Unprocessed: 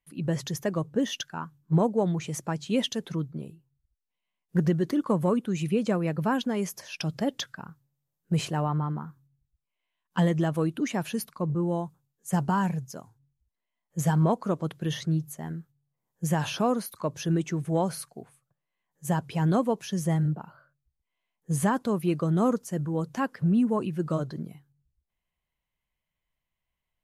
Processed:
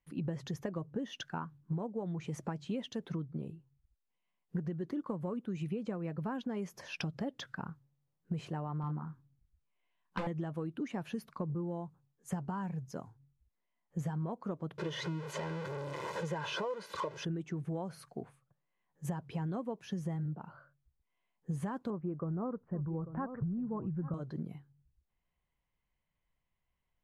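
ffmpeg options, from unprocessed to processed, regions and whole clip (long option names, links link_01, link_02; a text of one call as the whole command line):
ffmpeg -i in.wav -filter_complex "[0:a]asettb=1/sr,asplit=3[link_01][link_02][link_03];[link_01]atrim=end=8.814[link_04];[link_02]atrim=start=8.81:end=10.27,asetpts=PTS-STARTPTS,afade=type=in:duration=0.004:curve=qsin,afade=type=out:start_time=1.456:duration=0.004:curve=qsin,aeval=exprs='0.075*(abs(mod(val(0)/0.075+3,4)-2)-1)':channel_layout=same,asplit=2[link_05][link_06];[link_06]adelay=26,volume=-5.5dB[link_07];[link_05][link_07]amix=inputs=2:normalize=0,atrim=end_sample=64386[link_08];[link_03]atrim=start=10.266[link_09];[link_04][link_08]acrossfade=duration=0.004:curve1=hsin:curve2=qsin[link_10];[link_10][link_09]acrossfade=duration=0.004:curve1=qsin:curve2=hsin,asettb=1/sr,asplit=3[link_11][link_12][link_13];[link_11]atrim=end=14.784[link_14];[link_12]atrim=start=14.78:end=17.25,asetpts=PTS-STARTPTS,afade=type=in:duration=0.004:curve=qsin,afade=type=out:start_time=2.466:duration=0.004:curve=qsin,aeval=exprs='val(0)+0.5*0.0355*sgn(val(0))':channel_layout=same,highpass=240,lowpass=6600,aecho=1:1:2:0.9,atrim=end_sample=108927[link_15];[link_13]atrim=start=17.246[link_16];[link_14][link_15]acrossfade=duration=0.004:curve1=hsin:curve2=qsin[link_17];[link_17][link_16]acrossfade=duration=0.004:curve1=qsin:curve2=hsin,asettb=1/sr,asplit=3[link_18][link_19][link_20];[link_18]atrim=end=21.904[link_21];[link_19]atrim=start=21.9:end=24.14,asetpts=PTS-STARTPTS,afade=type=in:duration=0.004:curve=qsin,afade=type=out:start_time=2.236:duration=0.004:curve=qsin,lowpass=frequency=1500:width=0.5412,lowpass=frequency=1500:width=1.3066,asubboost=boost=9.5:cutoff=120,aecho=1:1:843:0.168,atrim=end_sample=98784[link_22];[link_20]atrim=start=24.136[link_23];[link_21][link_22]acrossfade=duration=0.004:curve1=hsin:curve2=qsin[link_24];[link_24][link_23]acrossfade=duration=0.004:curve1=qsin:curve2=hsin,lowpass=frequency=1700:poles=1,acompressor=threshold=-36dB:ratio=10,bandreject=frequency=630:width=19,volume=2dB" out.wav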